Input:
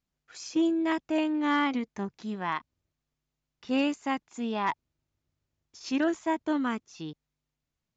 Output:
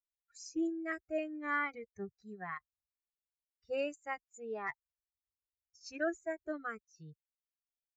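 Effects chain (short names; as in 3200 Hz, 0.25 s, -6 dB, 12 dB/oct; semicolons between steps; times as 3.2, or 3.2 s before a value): per-bin expansion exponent 2; fixed phaser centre 940 Hz, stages 6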